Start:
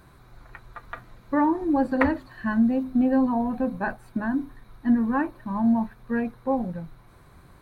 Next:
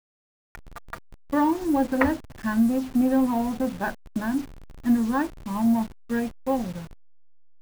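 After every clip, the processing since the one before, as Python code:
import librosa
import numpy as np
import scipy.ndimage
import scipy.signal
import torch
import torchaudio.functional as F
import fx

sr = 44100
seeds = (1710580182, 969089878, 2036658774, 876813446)

y = fx.delta_hold(x, sr, step_db=-36.0)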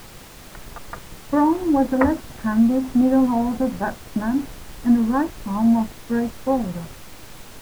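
y = scipy.signal.sosfilt(scipy.signal.butter(2, 1400.0, 'lowpass', fs=sr, output='sos'), x)
y = fx.dmg_noise_colour(y, sr, seeds[0], colour='pink', level_db=-46.0)
y = y * 10.0 ** (4.5 / 20.0)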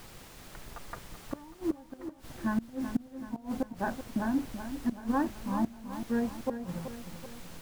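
y = fx.gate_flip(x, sr, shuts_db=-11.0, range_db=-26)
y = fx.echo_feedback(y, sr, ms=380, feedback_pct=52, wet_db=-10)
y = y * 10.0 ** (-8.0 / 20.0)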